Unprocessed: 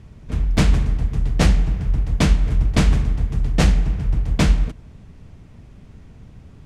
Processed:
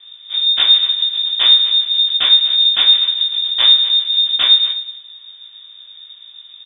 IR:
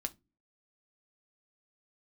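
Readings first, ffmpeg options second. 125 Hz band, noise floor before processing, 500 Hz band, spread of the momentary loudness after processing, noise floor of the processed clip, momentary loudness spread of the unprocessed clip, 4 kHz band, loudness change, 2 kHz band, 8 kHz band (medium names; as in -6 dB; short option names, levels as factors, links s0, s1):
under -35 dB, -44 dBFS, under -10 dB, 7 LU, -41 dBFS, 5 LU, +26.5 dB, +9.5 dB, +2.5 dB, under -40 dB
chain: -filter_complex "[0:a]aecho=1:1:247:0.168,asplit=2[s0][s1];[1:a]atrim=start_sample=2205,adelay=18[s2];[s1][s2]afir=irnorm=-1:irlink=0,volume=1.19[s3];[s0][s3]amix=inputs=2:normalize=0,lowpass=f=3100:t=q:w=0.5098,lowpass=f=3100:t=q:w=0.6013,lowpass=f=3100:t=q:w=0.9,lowpass=f=3100:t=q:w=2.563,afreqshift=-3700,volume=0.841"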